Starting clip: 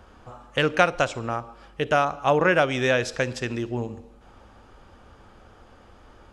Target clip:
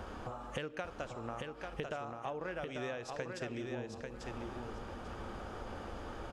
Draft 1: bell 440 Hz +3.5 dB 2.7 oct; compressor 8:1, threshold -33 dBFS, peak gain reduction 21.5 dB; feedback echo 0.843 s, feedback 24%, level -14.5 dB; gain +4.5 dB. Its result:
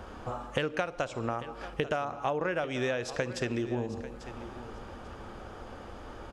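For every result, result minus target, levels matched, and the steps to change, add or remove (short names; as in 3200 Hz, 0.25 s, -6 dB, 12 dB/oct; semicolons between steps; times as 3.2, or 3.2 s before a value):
compressor: peak gain reduction -10 dB; echo-to-direct -10 dB
change: compressor 8:1, threshold -44.5 dBFS, peak gain reduction 31.5 dB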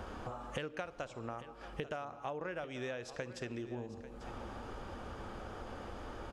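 echo-to-direct -10 dB
change: feedback echo 0.843 s, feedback 24%, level -4.5 dB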